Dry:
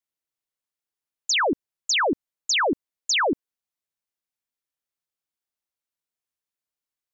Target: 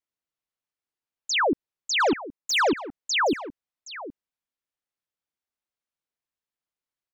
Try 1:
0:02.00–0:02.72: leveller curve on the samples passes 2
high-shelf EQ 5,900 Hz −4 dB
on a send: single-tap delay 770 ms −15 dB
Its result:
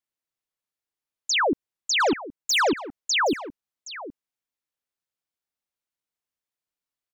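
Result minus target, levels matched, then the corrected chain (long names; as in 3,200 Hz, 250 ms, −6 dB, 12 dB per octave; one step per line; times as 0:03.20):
8,000 Hz band +3.0 dB
0:02.00–0:02.72: leveller curve on the samples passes 2
high-shelf EQ 5,900 Hz −11 dB
on a send: single-tap delay 770 ms −15 dB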